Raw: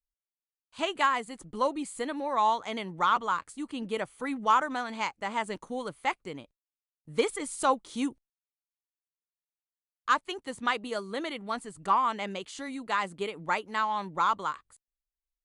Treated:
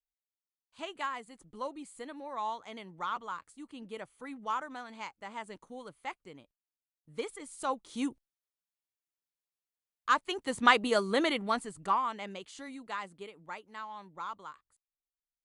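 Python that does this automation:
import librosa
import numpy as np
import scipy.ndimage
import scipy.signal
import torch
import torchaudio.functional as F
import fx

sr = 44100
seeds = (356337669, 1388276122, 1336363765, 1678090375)

y = fx.gain(x, sr, db=fx.line((7.51, -10.5), (8.09, -2.0), (10.09, -2.0), (10.67, 6.0), (11.32, 6.0), (12.1, -6.5), (12.68, -6.5), (13.44, -14.0)))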